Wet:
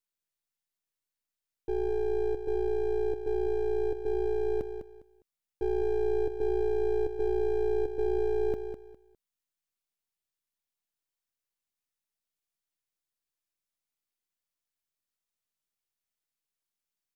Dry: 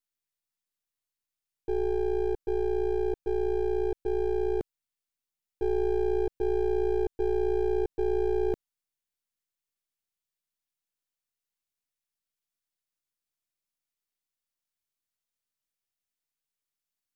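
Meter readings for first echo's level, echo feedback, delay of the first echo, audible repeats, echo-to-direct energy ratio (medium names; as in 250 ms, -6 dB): -8.5 dB, 24%, 203 ms, 3, -8.0 dB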